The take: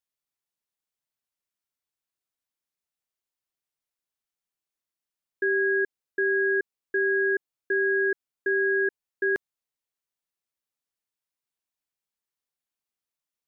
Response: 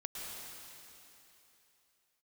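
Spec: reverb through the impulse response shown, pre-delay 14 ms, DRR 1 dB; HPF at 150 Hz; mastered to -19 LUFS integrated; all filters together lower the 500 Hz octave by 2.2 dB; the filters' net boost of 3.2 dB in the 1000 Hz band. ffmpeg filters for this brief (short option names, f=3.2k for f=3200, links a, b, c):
-filter_complex "[0:a]highpass=150,equalizer=f=500:t=o:g=-4,equalizer=f=1k:t=o:g=5.5,asplit=2[a][b];[1:a]atrim=start_sample=2205,adelay=14[c];[b][c]afir=irnorm=-1:irlink=0,volume=-1.5dB[d];[a][d]amix=inputs=2:normalize=0,volume=4.5dB"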